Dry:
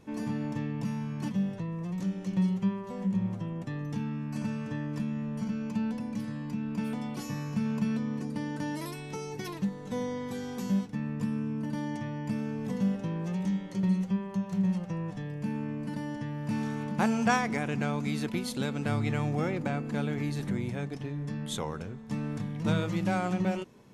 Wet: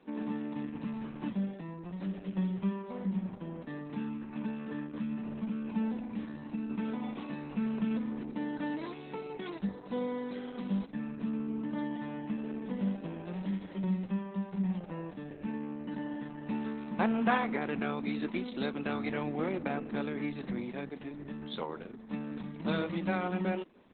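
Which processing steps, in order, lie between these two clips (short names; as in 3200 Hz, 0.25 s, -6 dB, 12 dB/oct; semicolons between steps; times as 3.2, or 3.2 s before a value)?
HPF 200 Hz 24 dB/oct; 17–17.73 high shelf 5000 Hz -3 dB; Opus 8 kbps 48000 Hz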